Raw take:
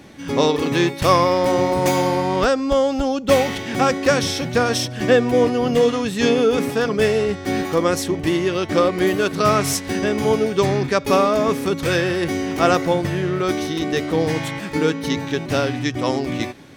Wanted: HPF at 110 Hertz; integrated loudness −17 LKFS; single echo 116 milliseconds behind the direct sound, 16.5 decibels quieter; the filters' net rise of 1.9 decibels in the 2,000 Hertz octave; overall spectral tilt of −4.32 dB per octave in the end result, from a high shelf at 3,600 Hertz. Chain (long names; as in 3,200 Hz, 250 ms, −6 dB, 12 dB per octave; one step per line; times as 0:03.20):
high-pass filter 110 Hz
parametric band 2,000 Hz +4 dB
high-shelf EQ 3,600 Hz −6 dB
single-tap delay 116 ms −16.5 dB
level +2 dB